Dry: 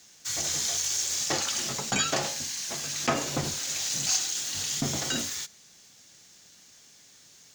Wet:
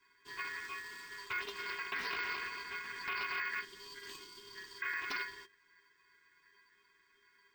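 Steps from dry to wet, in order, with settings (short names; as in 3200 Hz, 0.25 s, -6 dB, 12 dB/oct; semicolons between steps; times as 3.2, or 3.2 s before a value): 1.44–3.65 regenerating reverse delay 0.115 s, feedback 67%, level -5.5 dB; octave resonator F, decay 0.15 s; limiter -37 dBFS, peak gain reduction 10 dB; ring modulator 1800 Hz; 3.6–4.81 spectral gain 500–2800 Hz -8 dB; careless resampling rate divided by 2×, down filtered, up hold; Doppler distortion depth 0.23 ms; gain +10.5 dB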